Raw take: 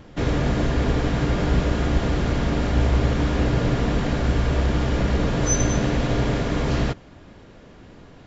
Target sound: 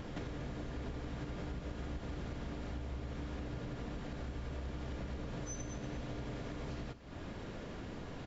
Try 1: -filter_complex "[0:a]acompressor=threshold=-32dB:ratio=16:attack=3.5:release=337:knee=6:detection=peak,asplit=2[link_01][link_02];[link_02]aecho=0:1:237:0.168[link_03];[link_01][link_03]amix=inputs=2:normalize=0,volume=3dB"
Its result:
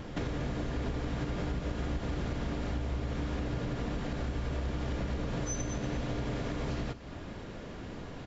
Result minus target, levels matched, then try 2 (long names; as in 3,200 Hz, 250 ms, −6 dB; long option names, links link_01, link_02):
downward compressor: peak gain reduction −8 dB
-filter_complex "[0:a]acompressor=threshold=-40.5dB:ratio=16:attack=3.5:release=337:knee=6:detection=peak,asplit=2[link_01][link_02];[link_02]aecho=0:1:237:0.168[link_03];[link_01][link_03]amix=inputs=2:normalize=0,volume=3dB"